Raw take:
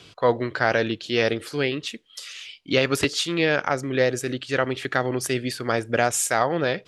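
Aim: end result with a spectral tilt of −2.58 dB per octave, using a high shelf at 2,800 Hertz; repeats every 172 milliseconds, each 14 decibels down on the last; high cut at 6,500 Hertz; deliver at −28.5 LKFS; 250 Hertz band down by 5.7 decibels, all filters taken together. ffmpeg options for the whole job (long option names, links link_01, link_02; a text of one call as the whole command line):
ffmpeg -i in.wav -af "lowpass=6500,equalizer=frequency=250:width_type=o:gain=-8,highshelf=frequency=2800:gain=7,aecho=1:1:172|344:0.2|0.0399,volume=-5dB" out.wav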